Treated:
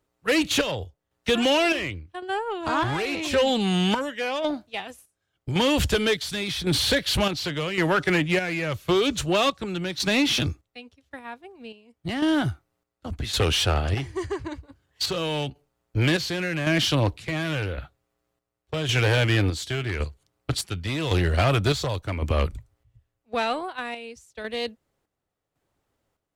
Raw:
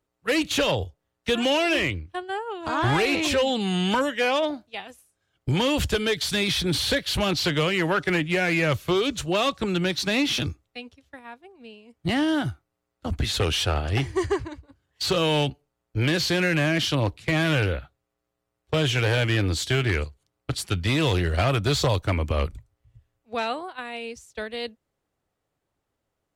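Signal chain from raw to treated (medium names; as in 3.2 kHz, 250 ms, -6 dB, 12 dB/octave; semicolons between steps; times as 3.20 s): square tremolo 0.9 Hz, depth 60%, duty 55%; in parallel at -5 dB: saturation -29 dBFS, distortion -7 dB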